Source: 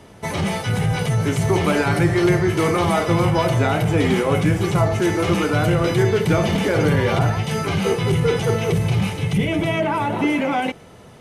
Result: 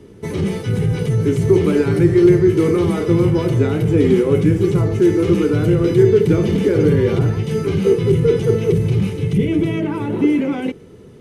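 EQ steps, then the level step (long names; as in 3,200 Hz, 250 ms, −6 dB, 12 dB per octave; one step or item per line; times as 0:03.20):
low shelf with overshoot 530 Hz +8 dB, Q 3
−6.0 dB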